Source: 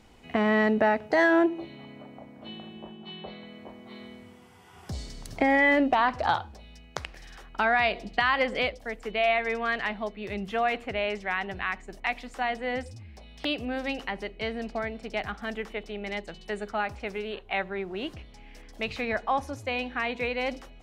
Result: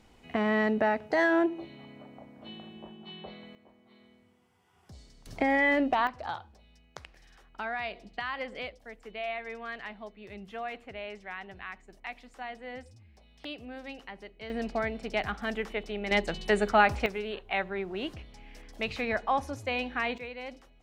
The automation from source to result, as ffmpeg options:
-af "asetnsamples=n=441:p=0,asendcmd='3.55 volume volume -15dB;5.26 volume volume -3.5dB;6.07 volume volume -11dB;14.5 volume volume 1dB;16.11 volume volume 8dB;17.06 volume volume -1dB;20.18 volume volume -11dB',volume=0.668"

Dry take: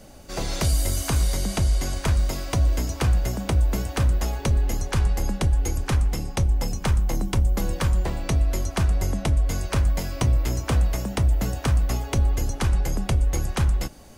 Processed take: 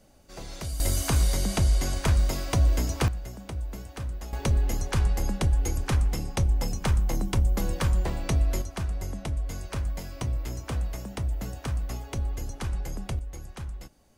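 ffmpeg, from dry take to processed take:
-af "asetnsamples=n=441:p=0,asendcmd='0.8 volume volume -1dB;3.08 volume volume -13dB;4.33 volume volume -2.5dB;8.62 volume volume -9dB;13.19 volume volume -15.5dB',volume=0.251"

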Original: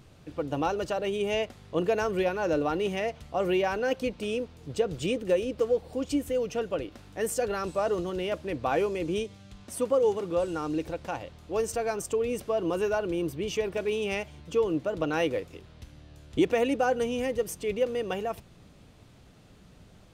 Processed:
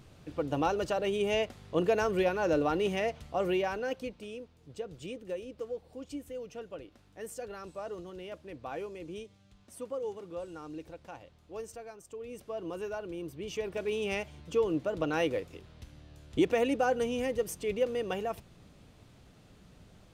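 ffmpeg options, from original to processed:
-af "volume=6.31,afade=t=out:st=3.1:d=1.21:silence=0.266073,afade=t=out:st=11.6:d=0.4:silence=0.446684,afade=t=in:st=12:d=0.57:silence=0.334965,afade=t=in:st=13.27:d=0.84:silence=0.421697"

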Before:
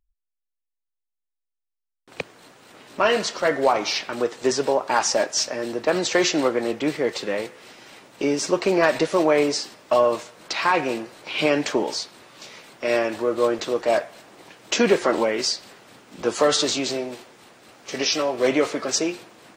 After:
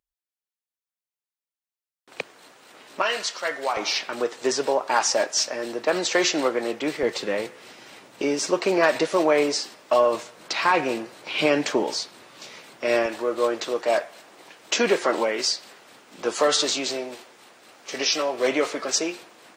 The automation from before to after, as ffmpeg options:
-af "asetnsamples=n=441:p=0,asendcmd='3.02 highpass f 1500;3.77 highpass f 350;7.03 highpass f 91;8.22 highpass f 270;10.14 highpass f 120;13.06 highpass f 410',highpass=f=410:p=1"

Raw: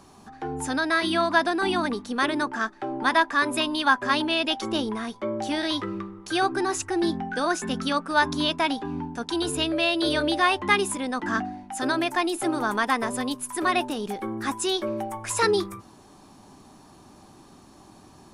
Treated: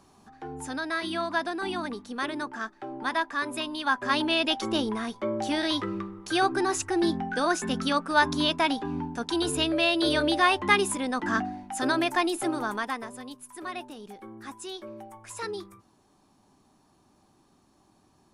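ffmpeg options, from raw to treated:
-af "volume=0.944,afade=t=in:st=3.82:d=0.47:silence=0.473151,afade=t=out:st=12.21:d=0.91:silence=0.237137"

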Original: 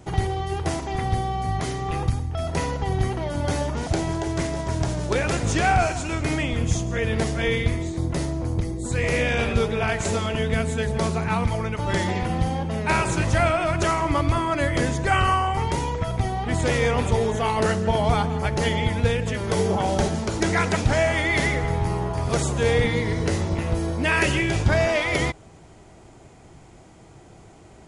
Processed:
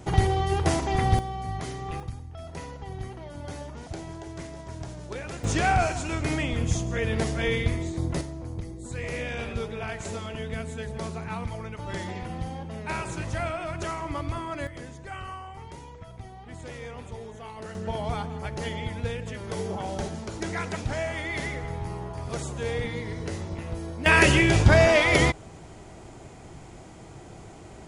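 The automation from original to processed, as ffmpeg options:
-af "asetnsamples=n=441:p=0,asendcmd='1.19 volume volume -7dB;2 volume volume -13dB;5.44 volume volume -3dB;8.21 volume volume -10dB;14.67 volume volume -18dB;17.75 volume volume -9.5dB;24.06 volume volume 3dB',volume=1.26"

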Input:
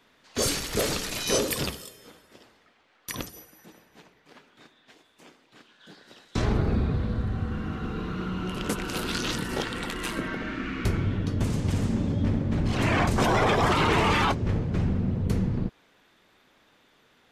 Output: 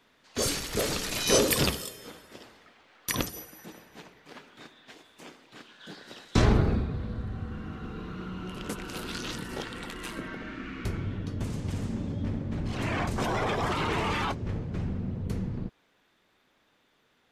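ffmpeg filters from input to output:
-af "volume=1.78,afade=t=in:st=0.89:d=0.86:silence=0.421697,afade=t=out:st=6.37:d=0.5:silence=0.266073"

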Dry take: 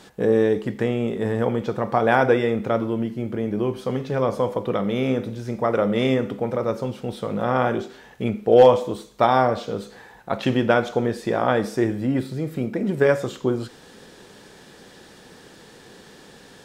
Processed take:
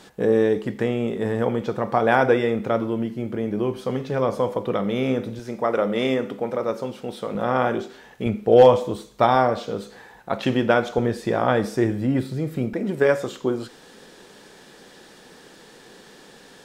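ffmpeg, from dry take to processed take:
-af "asetnsamples=n=441:p=0,asendcmd='5.39 equalizer g -13;7.35 equalizer g -5;8.26 equalizer g 3;9.35 equalizer g -3;10.98 equalizer g 3;12.73 equalizer g -9',equalizer=f=82:t=o:w=1.7:g=-2.5"

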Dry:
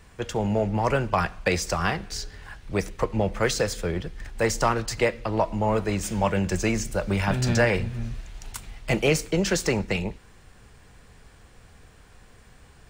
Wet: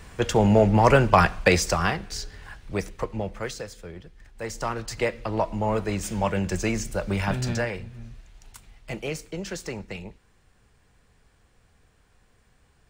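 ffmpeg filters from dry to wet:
-af "volume=7.5,afade=t=out:st=1.3:d=0.66:silence=0.446684,afade=t=out:st=2.48:d=1.2:silence=0.251189,afade=t=in:st=4.34:d=0.86:silence=0.281838,afade=t=out:st=7.3:d=0.45:silence=0.375837"

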